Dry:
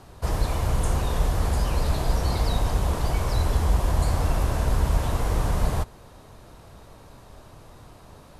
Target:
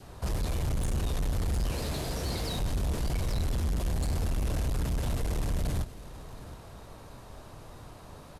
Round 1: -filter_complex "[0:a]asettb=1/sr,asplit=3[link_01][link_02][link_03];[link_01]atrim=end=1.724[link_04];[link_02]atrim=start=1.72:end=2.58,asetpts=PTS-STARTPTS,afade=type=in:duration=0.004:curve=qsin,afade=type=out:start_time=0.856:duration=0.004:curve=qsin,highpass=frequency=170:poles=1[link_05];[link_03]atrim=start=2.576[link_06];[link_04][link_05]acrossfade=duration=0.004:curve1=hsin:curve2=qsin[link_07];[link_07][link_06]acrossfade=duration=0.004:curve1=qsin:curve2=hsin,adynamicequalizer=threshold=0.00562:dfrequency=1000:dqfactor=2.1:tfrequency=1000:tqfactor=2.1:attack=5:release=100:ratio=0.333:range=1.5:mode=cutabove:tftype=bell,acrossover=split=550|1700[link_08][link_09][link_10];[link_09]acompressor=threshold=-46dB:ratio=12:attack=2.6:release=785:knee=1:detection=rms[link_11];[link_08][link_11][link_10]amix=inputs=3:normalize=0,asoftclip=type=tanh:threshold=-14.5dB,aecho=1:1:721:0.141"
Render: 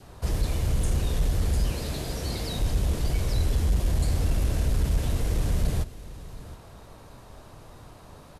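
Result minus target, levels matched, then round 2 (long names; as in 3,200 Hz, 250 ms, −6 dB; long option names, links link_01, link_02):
soft clipping: distortion −12 dB; downward compressor: peak gain reduction +5.5 dB
-filter_complex "[0:a]asettb=1/sr,asplit=3[link_01][link_02][link_03];[link_01]atrim=end=1.724[link_04];[link_02]atrim=start=1.72:end=2.58,asetpts=PTS-STARTPTS,afade=type=in:duration=0.004:curve=qsin,afade=type=out:start_time=0.856:duration=0.004:curve=qsin,highpass=frequency=170:poles=1[link_05];[link_03]atrim=start=2.576[link_06];[link_04][link_05]acrossfade=duration=0.004:curve1=hsin:curve2=qsin[link_07];[link_07][link_06]acrossfade=duration=0.004:curve1=qsin:curve2=hsin,adynamicequalizer=threshold=0.00562:dfrequency=1000:dqfactor=2.1:tfrequency=1000:tqfactor=2.1:attack=5:release=100:ratio=0.333:range=1.5:mode=cutabove:tftype=bell,acrossover=split=550|1700[link_08][link_09][link_10];[link_09]acompressor=threshold=-40dB:ratio=12:attack=2.6:release=785:knee=1:detection=rms[link_11];[link_08][link_11][link_10]amix=inputs=3:normalize=0,asoftclip=type=tanh:threshold=-25.5dB,aecho=1:1:721:0.141"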